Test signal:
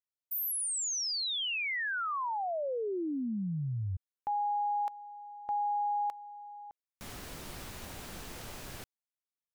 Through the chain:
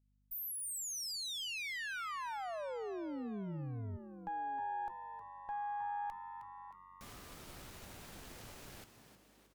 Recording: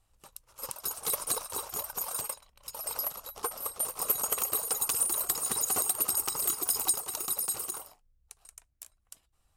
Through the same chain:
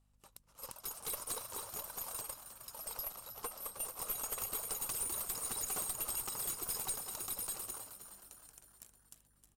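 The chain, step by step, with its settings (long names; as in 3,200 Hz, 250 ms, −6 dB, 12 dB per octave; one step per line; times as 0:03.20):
tube saturation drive 26 dB, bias 0.55
mains hum 50 Hz, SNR 31 dB
echo with shifted repeats 313 ms, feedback 55%, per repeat +91 Hz, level −10.5 dB
level −5.5 dB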